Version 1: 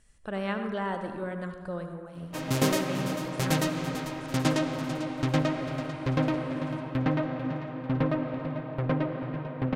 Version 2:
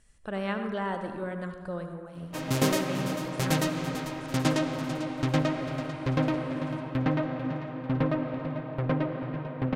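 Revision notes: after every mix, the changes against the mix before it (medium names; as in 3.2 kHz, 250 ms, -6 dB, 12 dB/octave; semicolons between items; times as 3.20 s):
no change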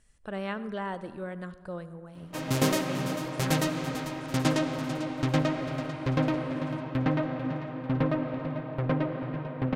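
speech: send -10.0 dB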